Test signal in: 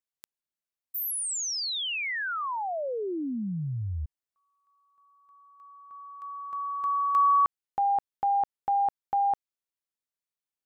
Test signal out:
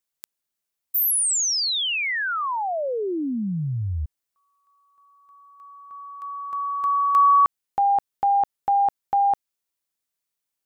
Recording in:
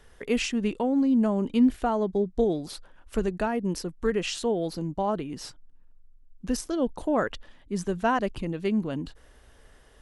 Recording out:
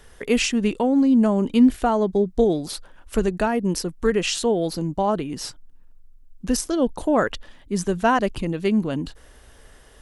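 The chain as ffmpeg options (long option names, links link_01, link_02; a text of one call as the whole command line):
ffmpeg -i in.wav -af "highshelf=frequency=5600:gain=5.5,volume=5.5dB" out.wav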